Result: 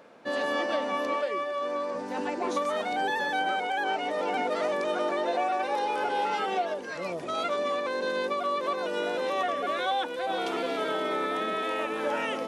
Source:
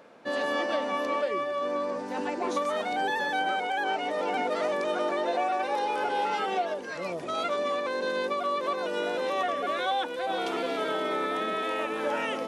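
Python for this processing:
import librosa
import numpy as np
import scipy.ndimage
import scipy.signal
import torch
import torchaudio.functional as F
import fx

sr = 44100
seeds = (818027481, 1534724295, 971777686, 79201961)

y = fx.highpass(x, sr, hz=330.0, slope=6, at=(1.15, 1.95))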